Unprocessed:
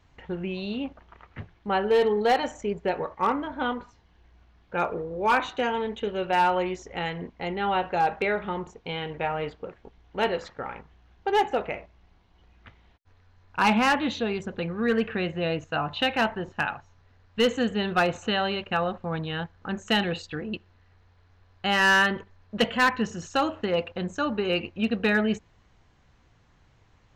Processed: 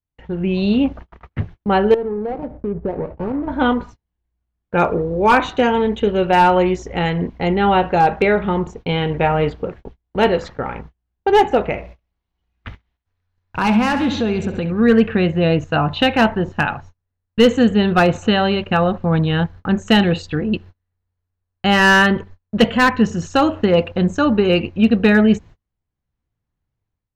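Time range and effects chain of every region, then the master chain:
0:01.94–0:03.48: running median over 41 samples + low-pass filter 1,300 Hz + downward compressor 2.5 to 1, threshold −36 dBFS
0:11.78–0:14.72: repeating echo 67 ms, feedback 54%, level −13 dB + downward compressor 2 to 1, threshold −34 dBFS + one half of a high-frequency compander encoder only
whole clip: noise gate −48 dBFS, range −35 dB; low-shelf EQ 400 Hz +9.5 dB; automatic gain control gain up to 11 dB; level −1 dB

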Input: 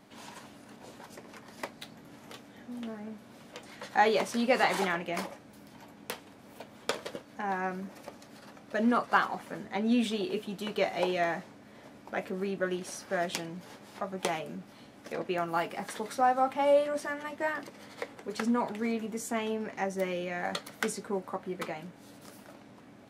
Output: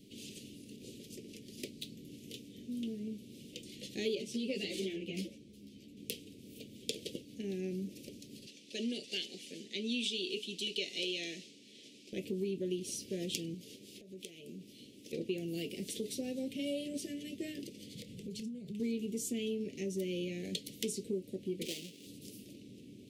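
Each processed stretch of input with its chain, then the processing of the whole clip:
0:04.15–0:05.97: high-shelf EQ 8,800 Hz −9.5 dB + string-ensemble chorus
0:08.46–0:12.13: band-pass filter 210–7,200 Hz + tilt shelving filter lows −7.5 dB, about 1,100 Hz
0:13.54–0:15.13: low-shelf EQ 170 Hz −10.5 dB + downward compressor 5 to 1, threshold −44 dBFS
0:17.94–0:18.80: low shelf with overshoot 230 Hz +6 dB, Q 3 + downward compressor 12 to 1, threshold −40 dBFS + double-tracking delay 28 ms −13.5 dB
0:21.65–0:22.07: each half-wave held at its own peak + meter weighting curve A
whole clip: elliptic band-stop filter 420–2,800 Hz, stop band 60 dB; downward compressor 2.5 to 1, threshold −37 dBFS; level +2.5 dB

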